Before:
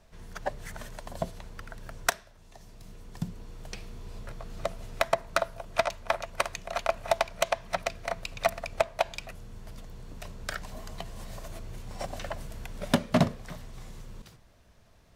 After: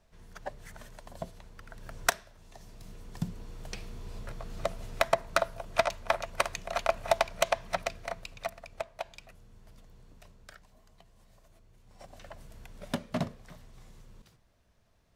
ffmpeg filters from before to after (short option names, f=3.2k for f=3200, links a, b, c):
-af "volume=11dB,afade=t=in:st=1.61:d=0.44:silence=0.446684,afade=t=out:st=7.59:d=0.92:silence=0.281838,afade=t=out:st=10.01:d=0.68:silence=0.354813,afade=t=in:st=11.78:d=0.79:silence=0.281838"